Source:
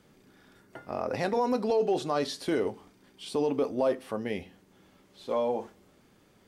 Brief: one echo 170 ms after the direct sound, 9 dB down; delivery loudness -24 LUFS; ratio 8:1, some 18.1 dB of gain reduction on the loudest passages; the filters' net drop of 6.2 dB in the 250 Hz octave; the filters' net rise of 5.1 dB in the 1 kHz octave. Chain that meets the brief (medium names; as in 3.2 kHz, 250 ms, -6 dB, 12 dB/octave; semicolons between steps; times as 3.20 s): peaking EQ 250 Hz -8.5 dB; peaking EQ 1 kHz +7 dB; compression 8:1, threshold -40 dBFS; delay 170 ms -9 dB; trim +20.5 dB